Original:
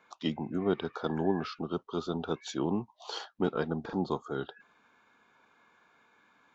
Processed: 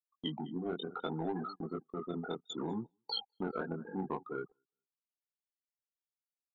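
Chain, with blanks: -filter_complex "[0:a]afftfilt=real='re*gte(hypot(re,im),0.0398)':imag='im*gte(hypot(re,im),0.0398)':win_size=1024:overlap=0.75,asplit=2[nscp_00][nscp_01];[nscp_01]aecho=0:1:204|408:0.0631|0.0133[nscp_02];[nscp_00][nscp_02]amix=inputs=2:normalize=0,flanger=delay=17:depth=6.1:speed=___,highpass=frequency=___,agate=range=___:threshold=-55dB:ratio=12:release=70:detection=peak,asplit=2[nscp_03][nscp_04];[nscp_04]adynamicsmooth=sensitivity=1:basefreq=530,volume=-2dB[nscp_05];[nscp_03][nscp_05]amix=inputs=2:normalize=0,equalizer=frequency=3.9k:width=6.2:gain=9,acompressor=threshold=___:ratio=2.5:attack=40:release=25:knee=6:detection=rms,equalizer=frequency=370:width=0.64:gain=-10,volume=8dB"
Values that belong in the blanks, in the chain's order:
0.67, 250, -23dB, -41dB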